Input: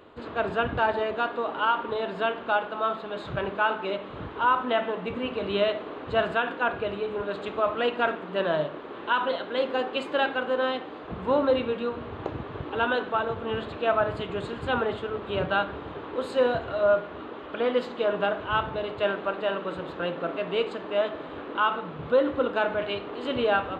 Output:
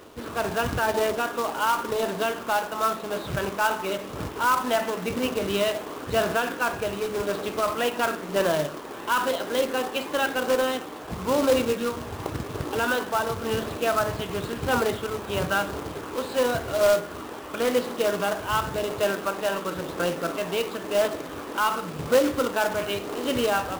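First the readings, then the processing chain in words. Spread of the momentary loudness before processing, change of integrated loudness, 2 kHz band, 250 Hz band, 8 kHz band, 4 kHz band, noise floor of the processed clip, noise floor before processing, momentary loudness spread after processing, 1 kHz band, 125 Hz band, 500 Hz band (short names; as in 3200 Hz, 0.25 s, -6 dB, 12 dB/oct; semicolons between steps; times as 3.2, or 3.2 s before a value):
9 LU, +1.5 dB, +1.0 dB, +3.0 dB, n/a, +3.0 dB, -37 dBFS, -40 dBFS, 8 LU, +1.0 dB, +4.0 dB, +1.0 dB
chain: in parallel at -1 dB: limiter -19 dBFS, peak gain reduction 7.5 dB; on the sum: phaser 0.95 Hz, delay 1.3 ms, feedback 24%; companded quantiser 4-bit; gain -3.5 dB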